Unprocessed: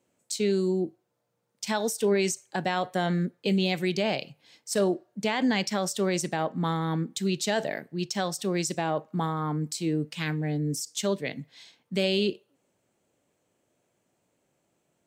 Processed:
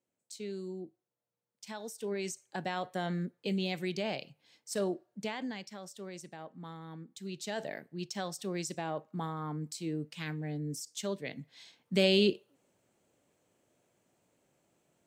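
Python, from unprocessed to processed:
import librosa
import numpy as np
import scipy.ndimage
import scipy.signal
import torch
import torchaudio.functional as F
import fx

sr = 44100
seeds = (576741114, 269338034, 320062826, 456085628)

y = fx.gain(x, sr, db=fx.line((1.84, -15.0), (2.57, -8.0), (5.2, -8.0), (5.65, -18.0), (7.01, -18.0), (7.68, -8.5), (11.17, -8.5), (12.02, 0.0)))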